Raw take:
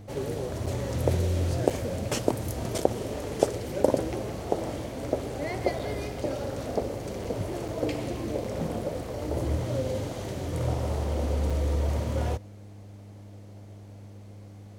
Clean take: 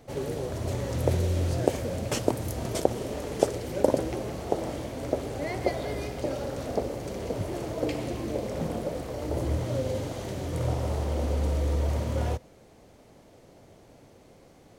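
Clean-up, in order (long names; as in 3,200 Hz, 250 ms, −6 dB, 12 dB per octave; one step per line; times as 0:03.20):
hum removal 101.3 Hz, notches 3
repair the gap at 0:00.66/0:01.70/0:02.78/0:05.79/0:07.24/0:07.68/0:08.44/0:11.50, 5.4 ms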